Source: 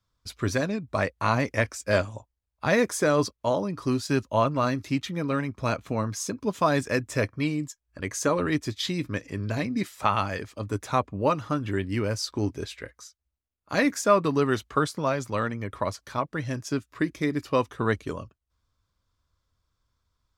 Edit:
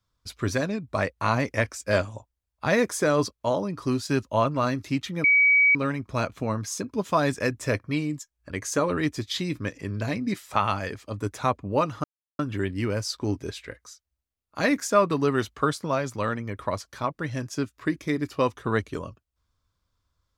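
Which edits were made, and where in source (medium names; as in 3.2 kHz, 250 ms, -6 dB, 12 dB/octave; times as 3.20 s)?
5.24 s: add tone 2.27 kHz -15 dBFS 0.51 s
11.53 s: insert silence 0.35 s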